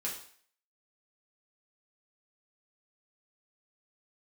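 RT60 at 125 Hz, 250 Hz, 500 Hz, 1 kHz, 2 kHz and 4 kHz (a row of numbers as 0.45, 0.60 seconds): 0.45, 0.45, 0.50, 0.55, 0.55, 0.55 seconds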